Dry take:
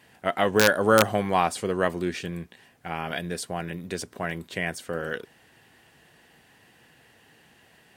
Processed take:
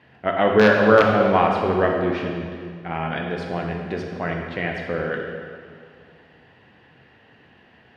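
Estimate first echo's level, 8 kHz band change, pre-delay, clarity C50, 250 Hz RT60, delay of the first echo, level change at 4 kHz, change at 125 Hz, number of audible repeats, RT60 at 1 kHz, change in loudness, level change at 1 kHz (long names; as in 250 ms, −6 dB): no echo audible, below −15 dB, 13 ms, 2.5 dB, 2.3 s, no echo audible, −1.0 dB, +5.5 dB, no echo audible, 2.0 s, +5.0 dB, +5.0 dB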